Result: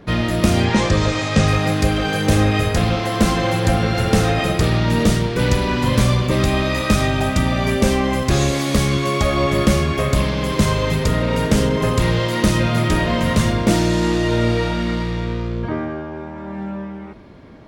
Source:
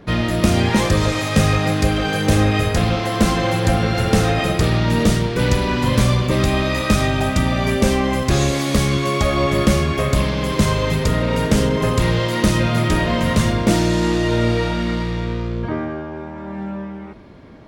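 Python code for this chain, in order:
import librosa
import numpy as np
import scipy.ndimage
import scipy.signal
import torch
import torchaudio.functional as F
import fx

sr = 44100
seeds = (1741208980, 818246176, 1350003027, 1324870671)

y = fx.lowpass(x, sr, hz=7700.0, slope=24, at=(0.65, 1.48))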